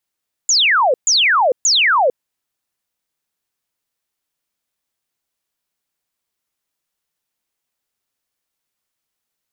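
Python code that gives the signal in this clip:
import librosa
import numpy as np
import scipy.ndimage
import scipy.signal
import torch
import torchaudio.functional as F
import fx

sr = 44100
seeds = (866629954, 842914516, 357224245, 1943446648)

y = fx.laser_zaps(sr, level_db=-10.5, start_hz=7300.0, end_hz=470.0, length_s=0.45, wave='sine', shots=3, gap_s=0.13)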